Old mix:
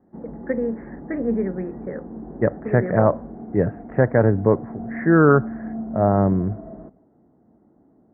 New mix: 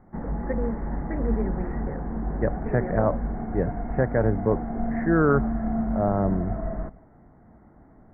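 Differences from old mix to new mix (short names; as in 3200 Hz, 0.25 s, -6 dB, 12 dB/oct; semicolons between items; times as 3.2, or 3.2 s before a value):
speech -6.0 dB; background: remove band-pass 330 Hz, Q 1.2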